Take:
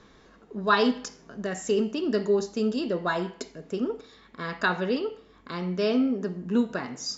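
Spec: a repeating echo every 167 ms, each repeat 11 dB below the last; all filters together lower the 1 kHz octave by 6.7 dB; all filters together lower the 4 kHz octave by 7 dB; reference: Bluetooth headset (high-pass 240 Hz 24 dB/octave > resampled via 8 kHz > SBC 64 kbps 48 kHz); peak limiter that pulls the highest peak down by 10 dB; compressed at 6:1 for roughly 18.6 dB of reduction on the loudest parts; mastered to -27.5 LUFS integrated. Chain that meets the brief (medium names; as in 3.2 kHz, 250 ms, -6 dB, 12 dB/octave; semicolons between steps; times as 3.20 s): peaking EQ 1 kHz -8 dB; peaking EQ 4 kHz -9 dB; compression 6:1, threshold -41 dBFS; peak limiter -39 dBFS; high-pass 240 Hz 24 dB/octave; feedback delay 167 ms, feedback 28%, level -11 dB; resampled via 8 kHz; trim +22 dB; SBC 64 kbps 48 kHz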